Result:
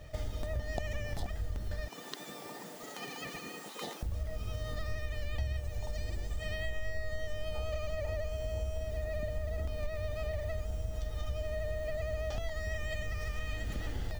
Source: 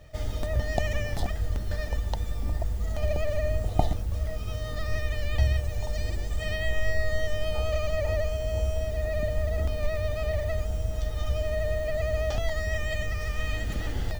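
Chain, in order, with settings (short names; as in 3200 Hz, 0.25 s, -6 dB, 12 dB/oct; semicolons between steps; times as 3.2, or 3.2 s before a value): 1.88–4.03 spectral gate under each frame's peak -25 dB weak; compressor 3:1, threshold -36 dBFS, peak gain reduction 14 dB; gain +1 dB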